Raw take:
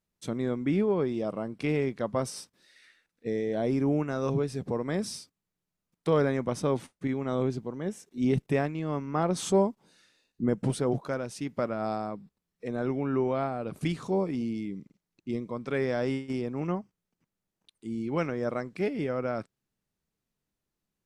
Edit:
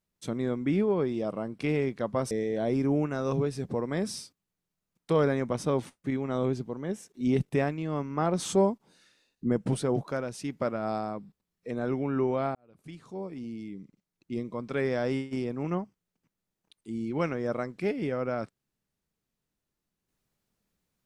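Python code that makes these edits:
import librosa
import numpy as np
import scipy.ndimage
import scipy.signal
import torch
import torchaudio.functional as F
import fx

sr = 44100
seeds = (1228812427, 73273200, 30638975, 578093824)

y = fx.edit(x, sr, fx.cut(start_s=2.31, length_s=0.97),
    fx.fade_in_span(start_s=13.52, length_s=2.06), tone=tone)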